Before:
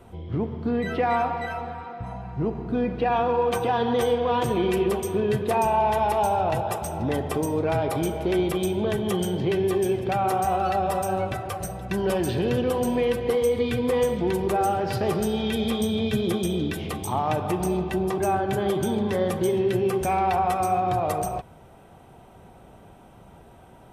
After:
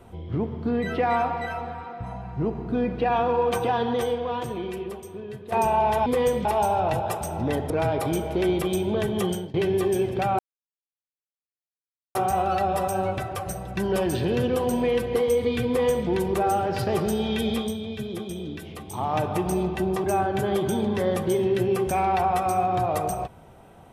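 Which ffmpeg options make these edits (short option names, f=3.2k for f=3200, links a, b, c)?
-filter_complex "[0:a]asplit=9[a][b][c][d][e][f][g][h][i];[a]atrim=end=5.52,asetpts=PTS-STARTPTS,afade=t=out:st=3.67:d=1.85:c=qua:silence=0.199526[j];[b]atrim=start=5.52:end=6.062,asetpts=PTS-STARTPTS,afade=t=in:d=0.004:c=hsin:silence=0.199526[k];[c]atrim=start=13.818:end=14.212[l];[d]atrim=start=6.058:end=7.312[m];[e]atrim=start=7.598:end=9.44,asetpts=PTS-STARTPTS,afade=t=out:st=1.582:d=0.26:silence=0.0668344[n];[f]atrim=start=9.44:end=10.29,asetpts=PTS-STARTPTS,afade=t=in:d=0.004:c=hsin:silence=0.0668344,afade=t=out:st=0.846:d=0.004:c=hsin,apad=pad_dur=1.76[o];[g]atrim=start=10.29:end=15.94,asetpts=PTS-STARTPTS,afade=t=in:d=0.004:c=hsin,afade=t=out:st=5.36:d=0.29:silence=0.398107[p];[h]atrim=start=15.94:end=17,asetpts=PTS-STARTPTS,volume=-8dB[q];[i]atrim=start=17,asetpts=PTS-STARTPTS,afade=t=in:d=0.29:silence=0.398107[r];[j][k]concat=n=2:v=0:a=1[s];[s][l]acrossfade=d=0.004:c1=hsin:c2=hsin[t];[t][m]acrossfade=d=0.004:c1=hsin:c2=hsin[u];[n][o][p][q][r]concat=n=5:v=0:a=1[v];[u][v]acrossfade=d=0.004:c1=hsin:c2=hsin"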